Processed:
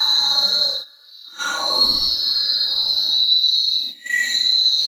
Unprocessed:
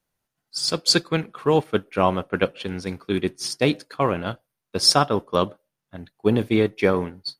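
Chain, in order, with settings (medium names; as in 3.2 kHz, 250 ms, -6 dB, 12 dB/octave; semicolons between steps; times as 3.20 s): four frequency bands reordered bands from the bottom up 2413; repeats whose band climbs or falls 790 ms, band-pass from 3.4 kHz, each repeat -1.4 oct, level -3 dB; waveshaping leveller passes 1; tape speed +25%; peak limiter -14 dBFS, peak gain reduction 11.5 dB; Paulstretch 7.1×, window 0.05 s, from 5.23 s; comb 3.5 ms, depth 84%; gate -29 dBFS, range -11 dB; trim +2.5 dB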